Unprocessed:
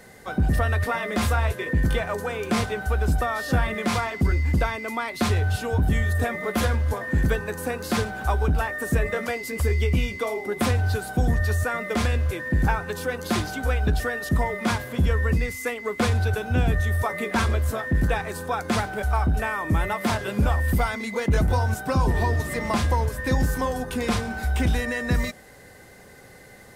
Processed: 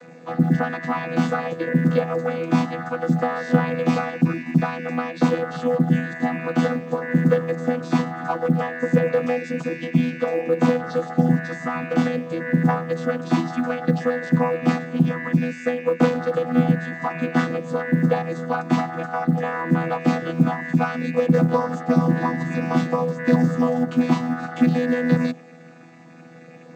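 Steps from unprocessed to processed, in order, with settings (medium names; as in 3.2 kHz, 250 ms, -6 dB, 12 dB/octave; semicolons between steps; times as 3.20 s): vocoder on a held chord bare fifth, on E3; short-mantissa float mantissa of 6-bit; trim +6.5 dB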